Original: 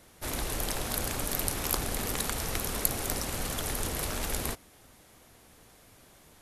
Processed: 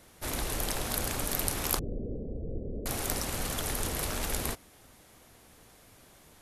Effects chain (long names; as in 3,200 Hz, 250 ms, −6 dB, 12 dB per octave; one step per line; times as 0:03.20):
0:01.79–0:02.86: Butterworth low-pass 550 Hz 48 dB per octave